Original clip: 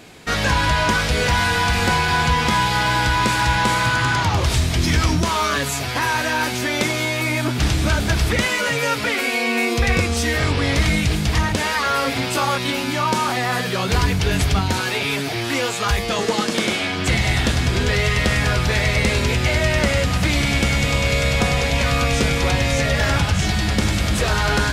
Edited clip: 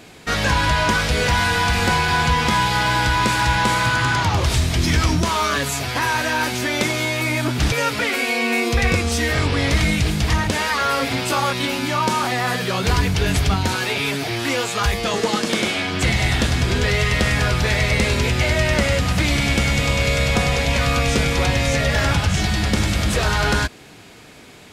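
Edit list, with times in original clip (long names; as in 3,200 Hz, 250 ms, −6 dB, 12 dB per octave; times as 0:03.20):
0:07.72–0:08.77: remove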